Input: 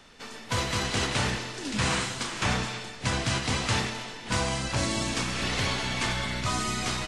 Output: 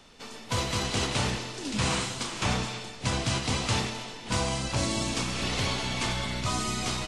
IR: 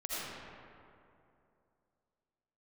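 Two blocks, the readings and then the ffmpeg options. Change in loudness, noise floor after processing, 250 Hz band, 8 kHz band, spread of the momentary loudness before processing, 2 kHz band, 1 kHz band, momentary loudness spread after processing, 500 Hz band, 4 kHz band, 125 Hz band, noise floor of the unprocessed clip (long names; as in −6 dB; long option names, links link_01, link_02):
−1.0 dB, −44 dBFS, 0.0 dB, 0.0 dB, 6 LU, −3.5 dB, −1.0 dB, 6 LU, 0.0 dB, −0.5 dB, 0.0 dB, −43 dBFS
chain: -af "equalizer=frequency=1700:width=2:gain=-5.5"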